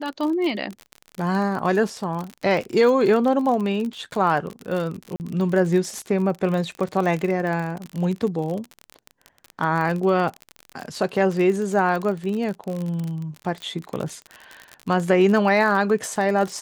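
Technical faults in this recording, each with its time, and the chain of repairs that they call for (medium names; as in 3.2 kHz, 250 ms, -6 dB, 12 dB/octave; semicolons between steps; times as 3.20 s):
crackle 38 per s -26 dBFS
5.16–5.20 s: dropout 39 ms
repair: de-click; interpolate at 5.16 s, 39 ms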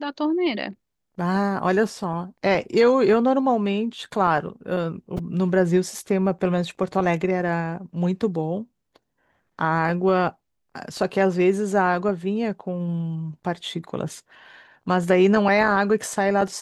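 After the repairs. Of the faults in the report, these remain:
nothing left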